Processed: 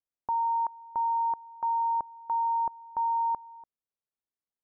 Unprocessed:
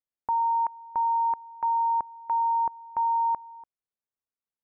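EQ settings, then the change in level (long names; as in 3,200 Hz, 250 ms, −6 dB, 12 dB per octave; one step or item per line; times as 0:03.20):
low-pass filter 1,200 Hz 12 dB per octave
−1.5 dB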